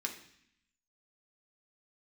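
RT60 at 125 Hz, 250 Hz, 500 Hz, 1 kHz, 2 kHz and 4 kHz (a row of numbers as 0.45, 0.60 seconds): 0.95, 0.95, 0.60, 0.70, 0.90, 0.85 seconds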